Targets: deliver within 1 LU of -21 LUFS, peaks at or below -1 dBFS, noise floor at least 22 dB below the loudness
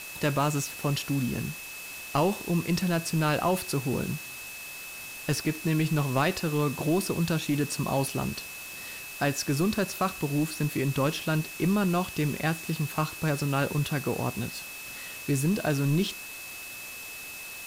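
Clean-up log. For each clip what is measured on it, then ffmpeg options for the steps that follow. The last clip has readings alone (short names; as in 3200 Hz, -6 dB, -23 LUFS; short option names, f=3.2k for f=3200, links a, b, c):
steady tone 2600 Hz; tone level -41 dBFS; noise floor -41 dBFS; noise floor target -51 dBFS; loudness -29.0 LUFS; peak -13.5 dBFS; loudness target -21.0 LUFS
-> -af "bandreject=f=2.6k:w=30"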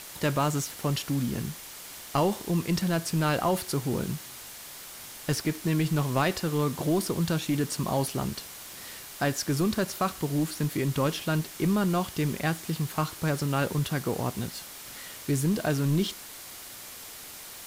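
steady tone none; noise floor -44 dBFS; noise floor target -51 dBFS
-> -af "afftdn=nr=7:nf=-44"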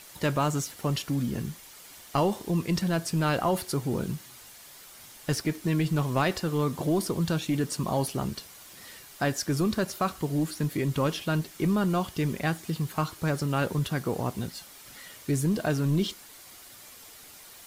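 noise floor -49 dBFS; noise floor target -51 dBFS
-> -af "afftdn=nr=6:nf=-49"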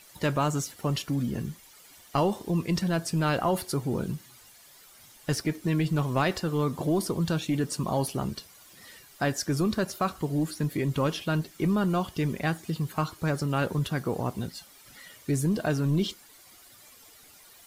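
noise floor -54 dBFS; loudness -28.5 LUFS; peak -14.5 dBFS; loudness target -21.0 LUFS
-> -af "volume=7.5dB"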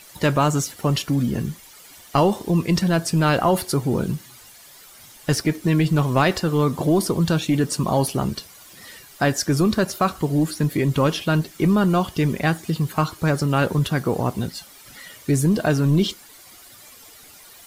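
loudness -21.0 LUFS; peak -7.0 dBFS; noise floor -46 dBFS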